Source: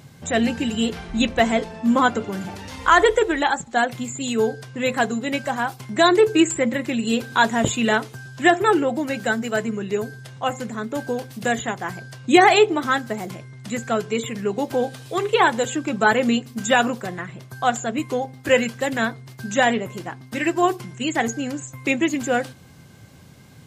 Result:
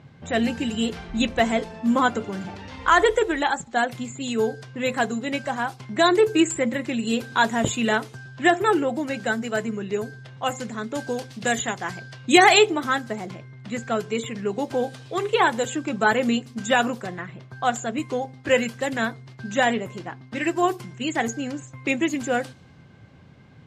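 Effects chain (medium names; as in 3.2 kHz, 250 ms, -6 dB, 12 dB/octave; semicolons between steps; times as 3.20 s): level-controlled noise filter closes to 2.7 kHz, open at -17.5 dBFS; 10.37–12.70 s: treble shelf 4.1 kHz -> 2.1 kHz +8.5 dB; trim -2.5 dB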